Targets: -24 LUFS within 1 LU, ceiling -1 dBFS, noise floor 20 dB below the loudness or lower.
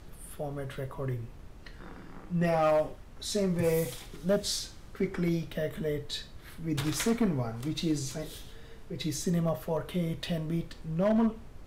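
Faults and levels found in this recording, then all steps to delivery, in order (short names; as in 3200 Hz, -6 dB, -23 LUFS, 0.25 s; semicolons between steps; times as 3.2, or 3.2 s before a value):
clipped 0.6%; flat tops at -20.5 dBFS; noise floor -49 dBFS; noise floor target -52 dBFS; loudness -31.5 LUFS; peak -20.5 dBFS; loudness target -24.0 LUFS
-> clip repair -20.5 dBFS; noise print and reduce 6 dB; gain +7.5 dB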